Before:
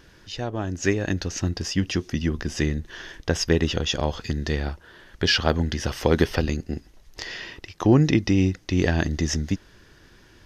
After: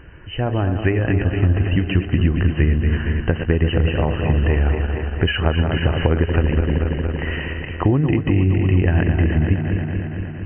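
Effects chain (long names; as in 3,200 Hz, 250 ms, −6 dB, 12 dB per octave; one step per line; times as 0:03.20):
feedback delay that plays each chunk backwards 116 ms, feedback 83%, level −9 dB
parametric band 200 Hz −5.5 dB 0.2 octaves
downward compressor 6 to 1, threshold −23 dBFS, peak gain reduction 10.5 dB
linear-phase brick-wall low-pass 3,100 Hz
parametric band 64 Hz +7.5 dB 2.5 octaves
level +6.5 dB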